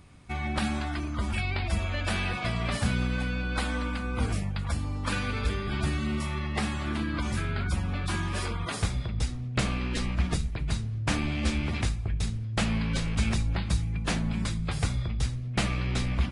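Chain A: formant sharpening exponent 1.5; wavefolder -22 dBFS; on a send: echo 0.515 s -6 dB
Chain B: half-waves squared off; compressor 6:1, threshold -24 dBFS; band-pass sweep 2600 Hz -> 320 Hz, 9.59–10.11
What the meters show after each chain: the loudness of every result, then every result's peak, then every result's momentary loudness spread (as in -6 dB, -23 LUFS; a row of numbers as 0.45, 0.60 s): -31.0, -40.0 LUFS; -18.5, -20.5 dBFS; 3, 6 LU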